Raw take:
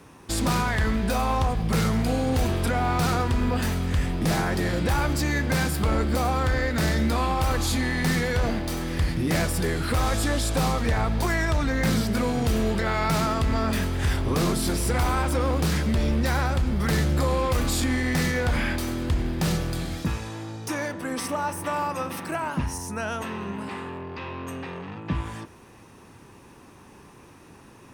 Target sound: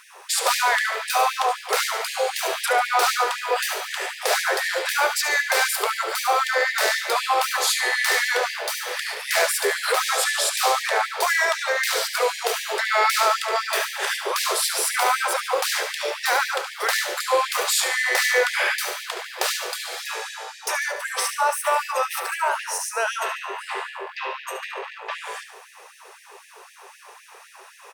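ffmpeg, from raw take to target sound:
ffmpeg -i in.wav -filter_complex "[0:a]asplit=2[link_01][link_02];[link_02]aecho=0:1:72|144|216|288|360|432:0.316|0.164|0.0855|0.0445|0.0231|0.012[link_03];[link_01][link_03]amix=inputs=2:normalize=0,afftfilt=real='re*gte(b*sr/1024,350*pow(1700/350,0.5+0.5*sin(2*PI*3.9*pts/sr)))':imag='im*gte(b*sr/1024,350*pow(1700/350,0.5+0.5*sin(2*PI*3.9*pts/sr)))':win_size=1024:overlap=0.75,volume=8dB" out.wav

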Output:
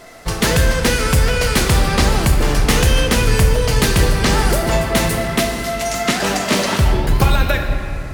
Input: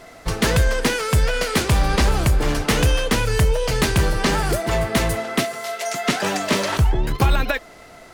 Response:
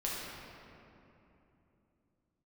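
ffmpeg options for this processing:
-filter_complex "[0:a]asplit=2[link_01][link_02];[link_02]highshelf=frequency=3900:gain=9[link_03];[1:a]atrim=start_sample=2205[link_04];[link_03][link_04]afir=irnorm=-1:irlink=0,volume=-5.5dB[link_05];[link_01][link_05]amix=inputs=2:normalize=0,volume=-1dB"

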